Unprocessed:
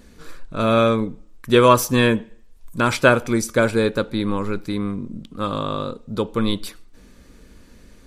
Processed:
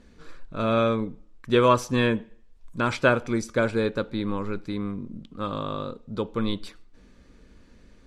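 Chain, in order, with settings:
high-frequency loss of the air 73 metres
level −5.5 dB

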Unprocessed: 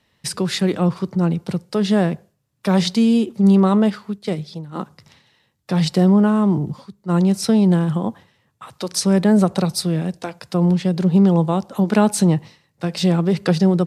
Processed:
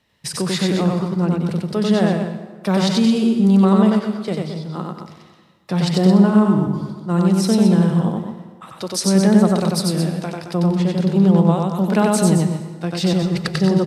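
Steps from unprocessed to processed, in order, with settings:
0:13.13–0:13.56: compressor whose output falls as the input rises −22 dBFS, ratio −0.5
loudspeakers that aren't time-aligned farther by 32 metres −2 dB, 75 metres −9 dB
dense smooth reverb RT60 1.5 s, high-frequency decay 0.65×, pre-delay 100 ms, DRR 11.5 dB
level −1.5 dB

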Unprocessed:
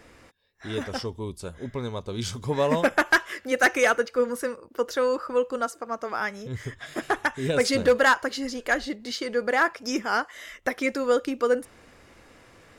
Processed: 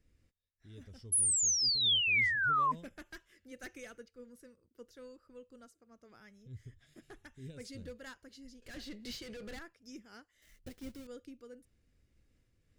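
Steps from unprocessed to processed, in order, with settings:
0:10.42–0:11.07: each half-wave held at its own peak
de-essing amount 40%
0:08.62–0:09.59: mid-hump overdrive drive 30 dB, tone 4,000 Hz, clips at −11.5 dBFS
guitar amp tone stack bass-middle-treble 10-0-1
0:01.12–0:02.72: sound drawn into the spectrogram fall 1,000–11,000 Hz −27 dBFS
amplitude modulation by smooth noise, depth 60%

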